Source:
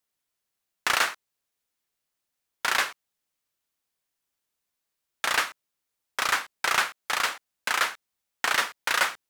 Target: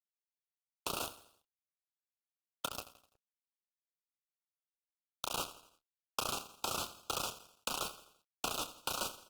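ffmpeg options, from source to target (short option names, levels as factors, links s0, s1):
-filter_complex "[0:a]equalizer=f=86:t=o:w=1.9:g=-2.5,asplit=3[s0][s1][s2];[s0]afade=t=out:st=2.66:d=0.02[s3];[s1]acompressor=threshold=0.0282:ratio=8,afade=t=in:st=2.66:d=0.02,afade=t=out:st=5.32:d=0.02[s4];[s2]afade=t=in:st=5.32:d=0.02[s5];[s3][s4][s5]amix=inputs=3:normalize=0,alimiter=limit=0.112:level=0:latency=1:release=19,acrossover=split=600|4900[s6][s7][s8];[s6]acompressor=threshold=0.00501:ratio=4[s9];[s7]acompressor=threshold=0.00631:ratio=4[s10];[s8]acompressor=threshold=0.002:ratio=4[s11];[s9][s10][s11]amix=inputs=3:normalize=0,aeval=exprs='val(0)+0.000355*(sin(2*PI*50*n/s)+sin(2*PI*2*50*n/s)/2+sin(2*PI*3*50*n/s)/3+sin(2*PI*4*50*n/s)/4+sin(2*PI*5*50*n/s)/5)':c=same,aeval=exprs='val(0)*gte(abs(val(0)),0.015)':c=same,asuperstop=centerf=1900:order=12:qfactor=1.8,asplit=2[s12][s13];[s13]adelay=27,volume=0.299[s14];[s12][s14]amix=inputs=2:normalize=0,aecho=1:1:84|168|252|336:0.188|0.0866|0.0399|0.0183,volume=2.51" -ar 48000 -c:a libopus -b:a 24k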